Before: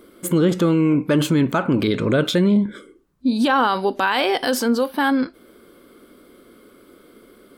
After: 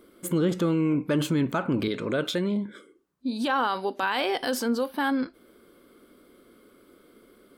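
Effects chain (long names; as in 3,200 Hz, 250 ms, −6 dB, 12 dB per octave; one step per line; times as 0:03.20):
0:01.88–0:04.03: high-pass filter 260 Hz 6 dB per octave
level −7 dB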